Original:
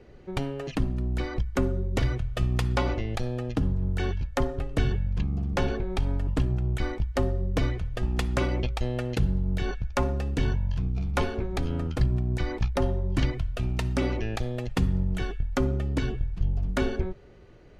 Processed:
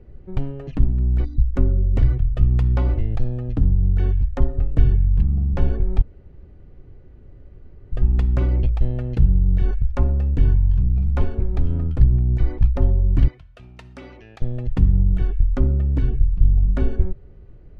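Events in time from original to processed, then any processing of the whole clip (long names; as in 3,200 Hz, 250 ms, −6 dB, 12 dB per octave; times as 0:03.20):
0:01.25–0:01.53: gain on a spectral selection 340–3,500 Hz −23 dB
0:06.02–0:07.92: fill with room tone
0:13.28–0:14.42: high-pass filter 1,400 Hz 6 dB per octave
whole clip: RIAA equalisation playback; level −5.5 dB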